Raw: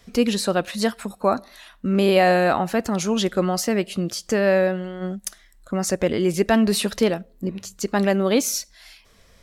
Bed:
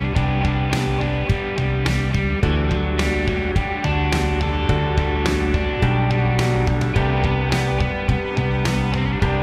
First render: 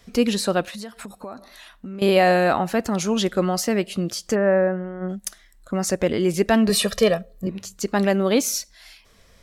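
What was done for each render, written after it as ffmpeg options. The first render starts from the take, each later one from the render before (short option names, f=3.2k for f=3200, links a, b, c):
-filter_complex "[0:a]asettb=1/sr,asplit=3[a][b][c];[a]atrim=end=0.664[d];[b]atrim=start=0.66:end=2.02,asetpts=PTS-STARTPTS,afade=t=in:d=0.004:c=qsin,afade=t=out:st=1.356:d=0.004:c=qsin,acompressor=threshold=-32dB:ratio=6:attack=3.2:release=140:knee=1:detection=peak[e];[c]atrim=start=2.016[f];[d][e]acrossfade=d=0.004:c1=hsin:c2=qsin[g];[g][f]acrossfade=d=0.004:c1=qsin:c2=hsin,asplit=3[h][i][j];[h]afade=t=out:st=4.34:d=0.02[k];[i]lowpass=f=1.8k:w=0.5412,lowpass=f=1.8k:w=1.3066,afade=t=in:st=4.34:d=0.02,afade=t=out:st=5.08:d=0.02[l];[j]afade=t=in:st=5.08:d=0.02[m];[k][l][m]amix=inputs=3:normalize=0,asettb=1/sr,asplit=3[n][o][p];[n]atrim=end=6.694[q];[o]atrim=start=6.69:end=7.47,asetpts=PTS-STARTPTS,afade=t=in:d=0.004:c=qsin,afade=t=out:st=0.776:d=0.004:c=qsin,aecho=1:1:1.7:0.97,atrim=end_sample=34398[r];[p]atrim=start=7.466[s];[q][r]acrossfade=d=0.004:c1=hsin:c2=qsin[t];[t][s]acrossfade=d=0.004:c1=qsin:c2=hsin"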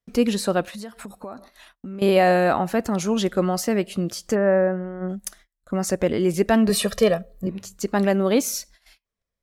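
-af "equalizer=f=4.1k:t=o:w=2.2:g=-4,agate=range=-32dB:threshold=-47dB:ratio=16:detection=peak"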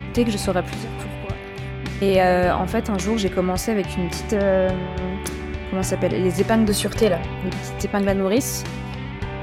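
-filter_complex "[1:a]volume=-10dB[a];[0:a][a]amix=inputs=2:normalize=0"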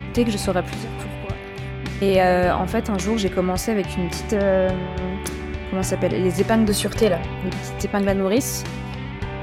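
-af anull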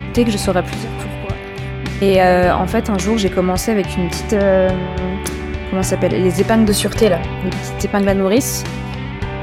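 -af "volume=5.5dB,alimiter=limit=-2dB:level=0:latency=1"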